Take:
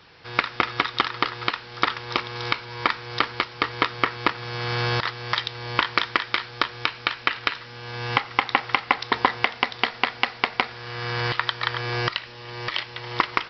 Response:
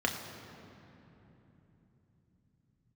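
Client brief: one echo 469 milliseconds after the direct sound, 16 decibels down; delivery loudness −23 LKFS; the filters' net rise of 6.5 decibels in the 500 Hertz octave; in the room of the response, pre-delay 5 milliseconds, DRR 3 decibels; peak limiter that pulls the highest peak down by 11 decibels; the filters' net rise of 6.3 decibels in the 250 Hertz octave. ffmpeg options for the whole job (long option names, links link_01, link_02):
-filter_complex "[0:a]equalizer=frequency=250:width_type=o:gain=6,equalizer=frequency=500:width_type=o:gain=6,alimiter=limit=-11dB:level=0:latency=1,aecho=1:1:469:0.158,asplit=2[link_01][link_02];[1:a]atrim=start_sample=2205,adelay=5[link_03];[link_02][link_03]afir=irnorm=-1:irlink=0,volume=-11.5dB[link_04];[link_01][link_04]amix=inputs=2:normalize=0,volume=3.5dB"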